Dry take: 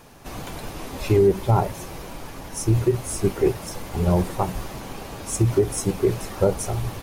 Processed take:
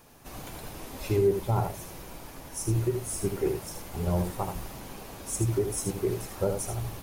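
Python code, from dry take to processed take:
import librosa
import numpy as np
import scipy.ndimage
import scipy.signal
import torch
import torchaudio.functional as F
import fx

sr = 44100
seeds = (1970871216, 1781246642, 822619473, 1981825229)

p1 = fx.high_shelf(x, sr, hz=9700.0, db=9.5)
p2 = p1 + fx.echo_single(p1, sr, ms=78, db=-6.5, dry=0)
y = F.gain(torch.from_numpy(p2), -8.5).numpy()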